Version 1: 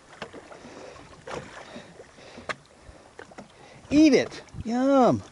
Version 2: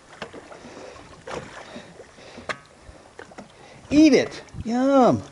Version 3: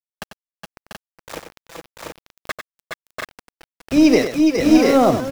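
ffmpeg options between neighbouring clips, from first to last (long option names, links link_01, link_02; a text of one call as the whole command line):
ffmpeg -i in.wav -af "bandreject=frequency=140.6:width_type=h:width=4,bandreject=frequency=281.2:width_type=h:width=4,bandreject=frequency=421.8:width_type=h:width=4,bandreject=frequency=562.4:width_type=h:width=4,bandreject=frequency=703:width_type=h:width=4,bandreject=frequency=843.6:width_type=h:width=4,bandreject=frequency=984.2:width_type=h:width=4,bandreject=frequency=1124.8:width_type=h:width=4,bandreject=frequency=1265.4:width_type=h:width=4,bandreject=frequency=1406:width_type=h:width=4,bandreject=frequency=1546.6:width_type=h:width=4,bandreject=frequency=1687.2:width_type=h:width=4,bandreject=frequency=1827.8:width_type=h:width=4,bandreject=frequency=1968.4:width_type=h:width=4,bandreject=frequency=2109:width_type=h:width=4,bandreject=frequency=2249.6:width_type=h:width=4,bandreject=frequency=2390.2:width_type=h:width=4,bandreject=frequency=2530.8:width_type=h:width=4,bandreject=frequency=2671.4:width_type=h:width=4,bandreject=frequency=2812:width_type=h:width=4,bandreject=frequency=2952.6:width_type=h:width=4,volume=3dB" out.wav
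ffmpeg -i in.wav -af "aeval=exprs='val(0)*gte(abs(val(0)),0.0398)':channel_layout=same,aecho=1:1:94|415|421|691|729:0.355|0.398|0.422|0.631|0.631,aeval=exprs='0.708*(cos(1*acos(clip(val(0)/0.708,-1,1)))-cos(1*PI/2))+0.0794*(cos(2*acos(clip(val(0)/0.708,-1,1)))-cos(2*PI/2))':channel_layout=same,volume=1.5dB" out.wav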